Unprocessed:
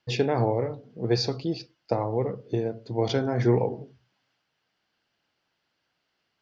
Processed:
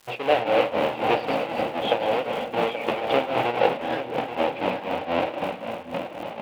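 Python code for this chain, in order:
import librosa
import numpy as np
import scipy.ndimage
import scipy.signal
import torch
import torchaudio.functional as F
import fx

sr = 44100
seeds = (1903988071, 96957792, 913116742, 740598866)

y = fx.halfwave_hold(x, sr)
y = fx.echo_split(y, sr, split_hz=470.0, low_ms=549, high_ms=106, feedback_pct=52, wet_db=-7.5)
y = fx.echo_pitch(y, sr, ms=173, semitones=-6, count=3, db_per_echo=-3.0)
y = fx.cabinet(y, sr, low_hz=360.0, low_slope=12, high_hz=3100.0, hz=(380.0, 550.0, 780.0, 1200.0, 1700.0, 2700.0), db=(-7, 9, 8, -4, -5, 5))
y = fx.dmg_crackle(y, sr, seeds[0], per_s=fx.steps((0.0, 580.0), (3.6, 200.0)), level_db=-38.0)
y = fx.tremolo_shape(y, sr, shape='triangle', hz=3.9, depth_pct=85)
y = y + 10.0 ** (-10.5 / 20.0) * np.pad(y, (int(830 * sr / 1000.0), 0))[:len(y)]
y = y * librosa.db_to_amplitude(2.0)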